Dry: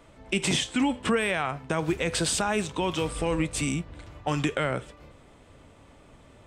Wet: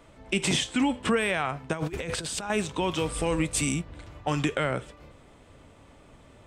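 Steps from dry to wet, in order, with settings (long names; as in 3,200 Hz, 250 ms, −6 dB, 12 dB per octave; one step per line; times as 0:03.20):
0:01.73–0:02.50: compressor whose output falls as the input rises −31 dBFS, ratio −0.5
0:03.13–0:03.82: high-shelf EQ 6,600 Hz +7.5 dB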